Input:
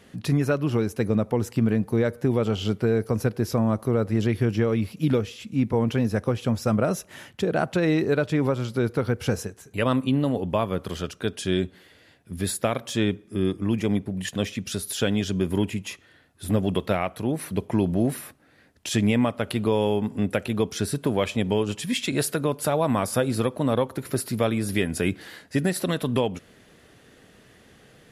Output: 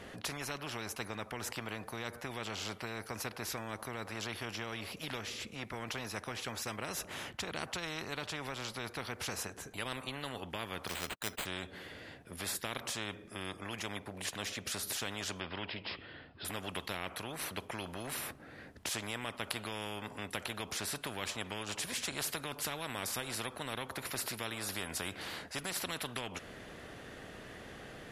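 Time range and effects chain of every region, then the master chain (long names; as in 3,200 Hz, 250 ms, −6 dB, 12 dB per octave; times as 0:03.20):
0:10.87–0:11.46: noise gate −42 dBFS, range −47 dB + bad sample-rate conversion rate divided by 8×, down none, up hold + one half of a high-frequency compander encoder only
0:15.40–0:16.45: Chebyshev low-pass filter 5,200 Hz, order 10 + parametric band 3,000 Hz +6 dB 0.24 octaves
whole clip: high-shelf EQ 3,300 Hz −9 dB; every bin compressed towards the loudest bin 4 to 1; level −5 dB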